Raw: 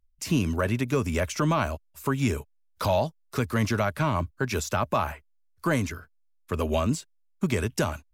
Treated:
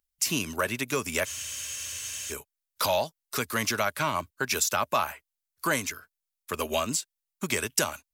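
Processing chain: low shelf 140 Hz -5 dB; wow and flutter 17 cents; tilt +3 dB/oct; transient shaper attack +1 dB, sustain -3 dB; spectral freeze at 1.28, 1.03 s

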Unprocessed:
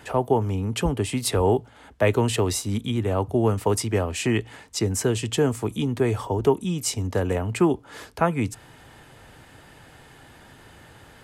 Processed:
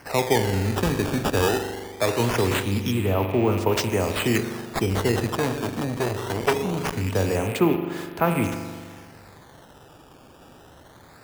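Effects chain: rattling part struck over -35 dBFS, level -27 dBFS; 1.47–2.2 low shelf 450 Hz -7 dB; in parallel at +0.5 dB: level quantiser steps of 15 dB; on the sum: low shelf 65 Hz -8.5 dB; spring tank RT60 1.8 s, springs 41 ms, chirp 30 ms, DRR 5.5 dB; decimation with a swept rate 12×, swing 160% 0.22 Hz; 5.27–6.94 core saturation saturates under 1400 Hz; gain -2.5 dB

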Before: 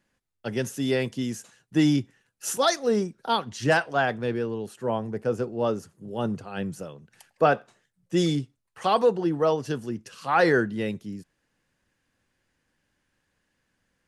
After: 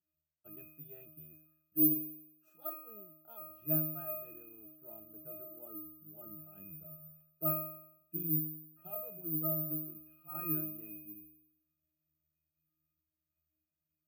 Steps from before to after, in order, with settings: 1.19–3.62 bell 160 Hz -10 dB 0.88 oct; octave resonator D#, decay 0.76 s; careless resampling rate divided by 3×, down none, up zero stuff

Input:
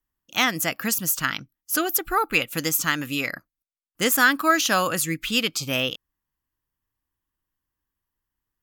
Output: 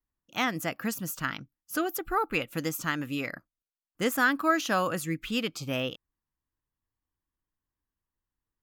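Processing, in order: high shelf 2200 Hz -11 dB; gain -3 dB

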